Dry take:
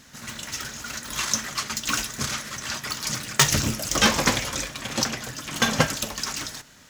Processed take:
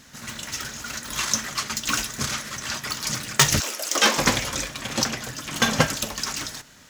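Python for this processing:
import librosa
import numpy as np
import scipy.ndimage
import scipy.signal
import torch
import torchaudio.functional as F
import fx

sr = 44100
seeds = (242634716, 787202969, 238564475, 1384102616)

y = fx.highpass(x, sr, hz=fx.line((3.59, 520.0), (4.17, 230.0)), slope=24, at=(3.59, 4.17), fade=0.02)
y = F.gain(torch.from_numpy(y), 1.0).numpy()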